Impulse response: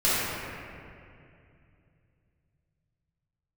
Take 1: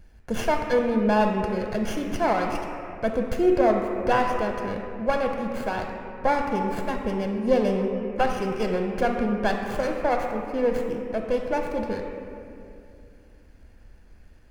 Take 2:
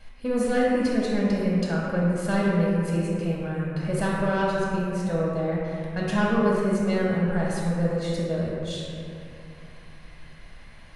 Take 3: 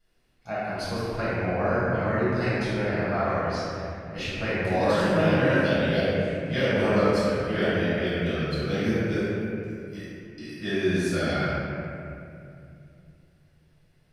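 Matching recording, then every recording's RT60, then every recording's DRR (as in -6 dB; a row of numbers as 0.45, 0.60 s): 3; 2.5, 2.5, 2.5 s; 2.0, -5.5, -13.0 dB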